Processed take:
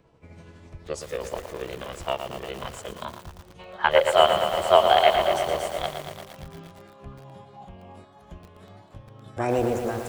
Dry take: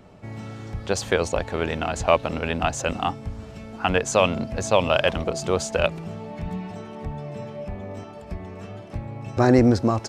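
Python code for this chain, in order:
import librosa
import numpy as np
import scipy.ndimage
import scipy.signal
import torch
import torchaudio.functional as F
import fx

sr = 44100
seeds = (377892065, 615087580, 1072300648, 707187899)

y = fx.pitch_glide(x, sr, semitones=-5.0, runs='ending unshifted')
y = fx.dynamic_eq(y, sr, hz=370.0, q=2.9, threshold_db=-35.0, ratio=4.0, max_db=4)
y = fx.spec_box(y, sr, start_s=3.59, length_s=1.78, low_hz=330.0, high_hz=3300.0, gain_db=12)
y = fx.formant_shift(y, sr, semitones=6)
y = fx.echo_crushed(y, sr, ms=115, feedback_pct=80, bits=5, wet_db=-7.0)
y = F.gain(torch.from_numpy(y), -10.0).numpy()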